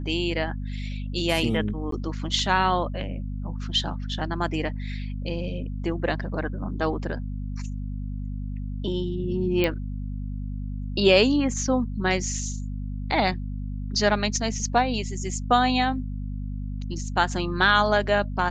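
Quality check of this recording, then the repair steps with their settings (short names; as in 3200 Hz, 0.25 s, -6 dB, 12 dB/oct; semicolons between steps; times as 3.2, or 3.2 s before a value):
hum 50 Hz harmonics 5 -31 dBFS
1.91–1.92 gap 13 ms
9.64 pop -11 dBFS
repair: de-click; de-hum 50 Hz, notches 5; interpolate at 1.91, 13 ms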